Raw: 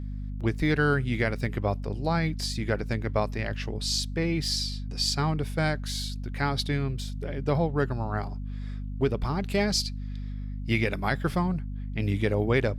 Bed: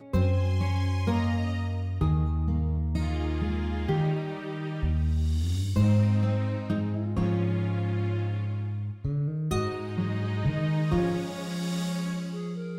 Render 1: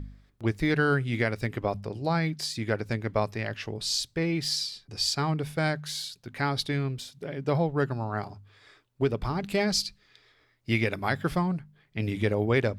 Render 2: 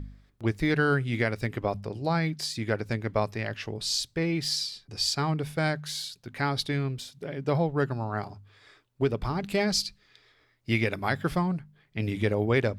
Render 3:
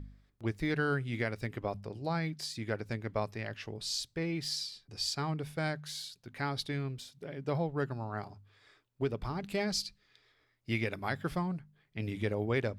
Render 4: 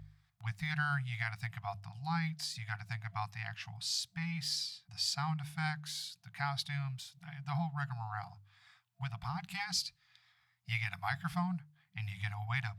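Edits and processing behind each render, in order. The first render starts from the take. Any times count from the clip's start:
de-hum 50 Hz, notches 5
nothing audible
gain -7 dB
HPF 91 Hz; FFT band-reject 190–680 Hz

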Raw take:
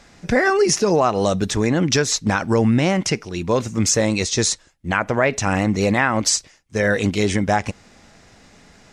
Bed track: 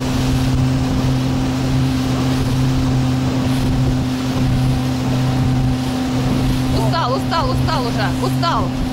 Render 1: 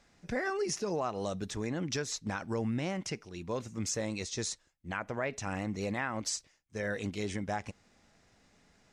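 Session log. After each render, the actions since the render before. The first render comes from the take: gain -16.5 dB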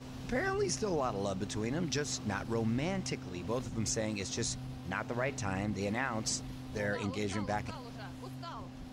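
add bed track -27 dB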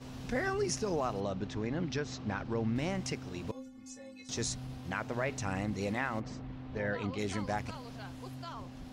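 1.2–2.76 air absorption 160 m; 3.51–4.29 metallic resonator 260 Hz, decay 0.34 s, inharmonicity 0.008; 6.19–7.17 LPF 1600 Hz -> 3900 Hz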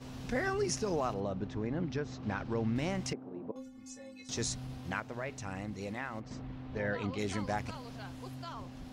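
1.14–2.23 high shelf 2100 Hz -9.5 dB; 3.13–3.56 Butterworth band-pass 430 Hz, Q 0.64; 5–6.31 gain -5.5 dB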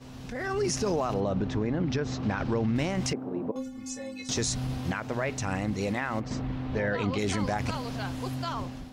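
limiter -30.5 dBFS, peak gain reduction 9 dB; AGC gain up to 11 dB

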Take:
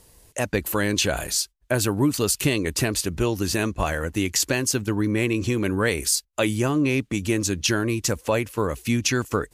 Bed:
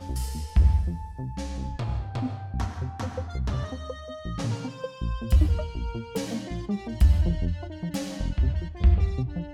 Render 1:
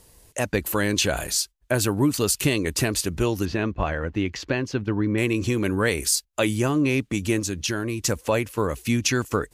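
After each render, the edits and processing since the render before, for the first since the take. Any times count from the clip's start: 3.45–5.18 air absorption 250 m; 7.39–8 compressor 1.5:1, threshold -29 dBFS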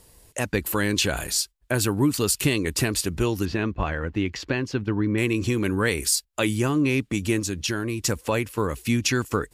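notch 6200 Hz, Q 18; dynamic EQ 620 Hz, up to -5 dB, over -37 dBFS, Q 2.5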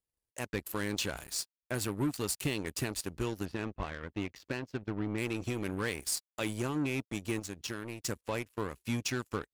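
power-law curve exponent 2; soft clip -24.5 dBFS, distortion -10 dB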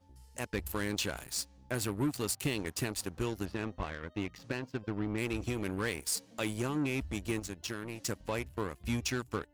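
add bed -26.5 dB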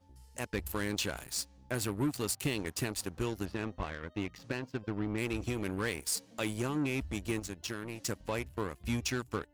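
nothing audible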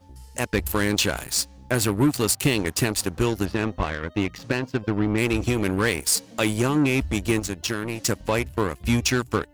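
gain +12 dB

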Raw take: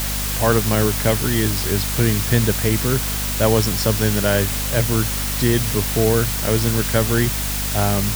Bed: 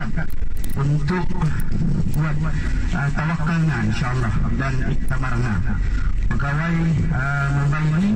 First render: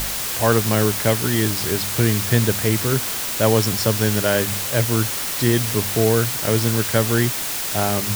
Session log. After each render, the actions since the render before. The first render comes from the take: de-hum 50 Hz, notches 5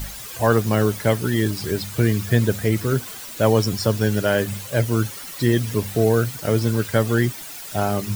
denoiser 13 dB, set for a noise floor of -26 dBFS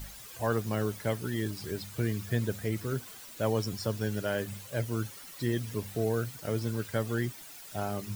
gain -12 dB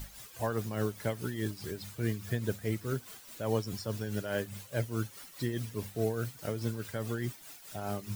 tremolo 4.8 Hz, depth 56%

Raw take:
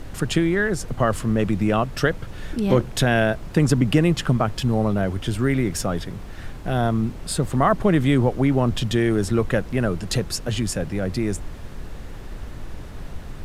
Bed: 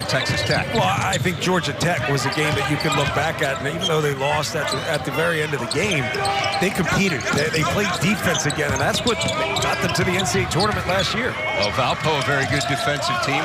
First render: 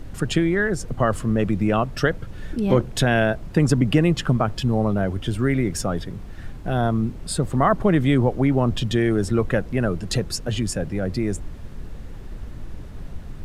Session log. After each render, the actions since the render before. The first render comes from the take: denoiser 6 dB, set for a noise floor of -36 dBFS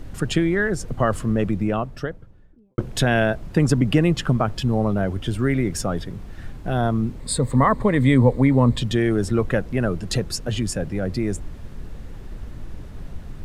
1.21–2.78 studio fade out; 7.2–8.81 ripple EQ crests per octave 0.99, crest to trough 10 dB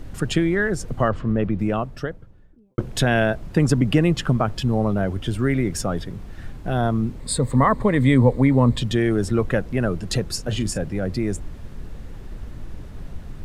1.08–1.59 air absorption 210 m; 10.33–10.78 doubler 37 ms -12 dB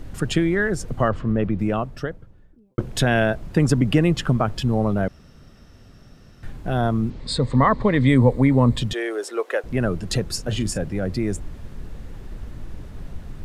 5.08–6.43 room tone; 7.1–8.08 synth low-pass 4600 Hz, resonance Q 1.6; 8.93–9.64 steep high-pass 390 Hz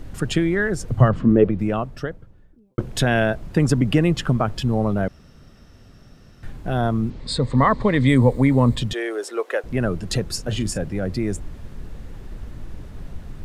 0.89–1.5 bell 80 Hz -> 520 Hz +13.5 dB; 7.58–8.75 high shelf 4800 Hz +7 dB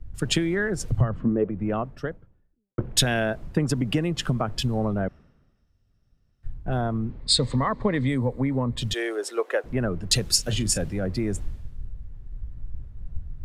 compressor 12:1, threshold -20 dBFS, peak gain reduction 12.5 dB; three-band expander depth 100%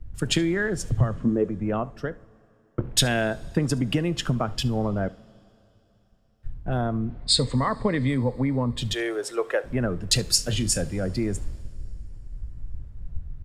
echo 72 ms -23.5 dB; two-slope reverb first 0.3 s, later 3.5 s, from -19 dB, DRR 16 dB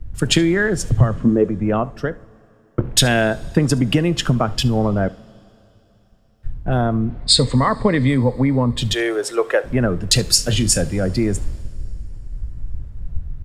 gain +7.5 dB; limiter -1 dBFS, peak gain reduction 2.5 dB

